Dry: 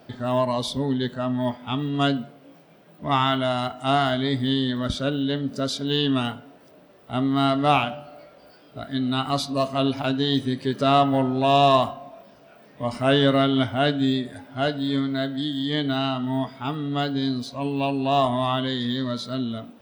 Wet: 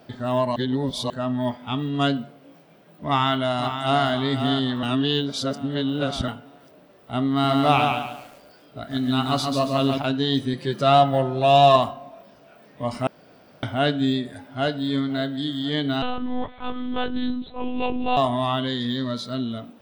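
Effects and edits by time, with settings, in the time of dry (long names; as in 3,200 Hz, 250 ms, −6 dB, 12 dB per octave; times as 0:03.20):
0:00.56–0:01.10: reverse
0:03.06–0:04.07: delay throw 520 ms, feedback 45%, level −8.5 dB
0:04.83–0:06.28: reverse
0:07.30–0:09.98: feedback echo at a low word length 140 ms, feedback 35%, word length 8 bits, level −4 dB
0:10.53–0:11.76: comb filter 5.8 ms, depth 59%
0:13.07–0:13.63: fill with room tone
0:14.36–0:15.17: delay throw 520 ms, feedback 55%, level −17 dB
0:16.02–0:18.17: one-pitch LPC vocoder at 8 kHz 250 Hz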